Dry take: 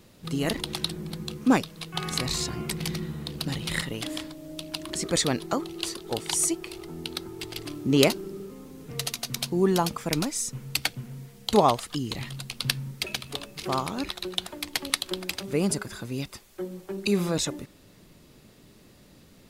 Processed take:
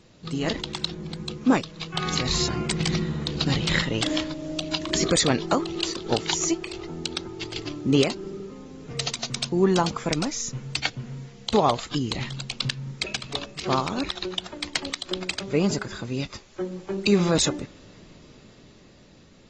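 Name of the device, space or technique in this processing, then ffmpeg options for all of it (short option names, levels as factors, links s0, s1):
low-bitrate web radio: -af "dynaudnorm=f=330:g=13:m=4.22,alimiter=limit=0.355:level=0:latency=1:release=227" -ar 32000 -c:a aac -b:a 24k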